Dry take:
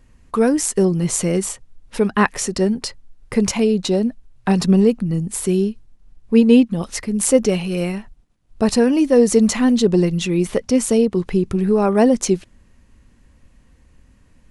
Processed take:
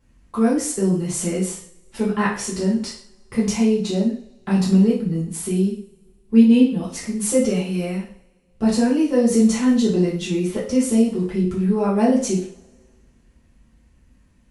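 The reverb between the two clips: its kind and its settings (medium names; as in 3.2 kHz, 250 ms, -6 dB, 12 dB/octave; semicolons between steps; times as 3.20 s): two-slope reverb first 0.45 s, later 1.8 s, from -26 dB, DRR -7.5 dB; trim -12.5 dB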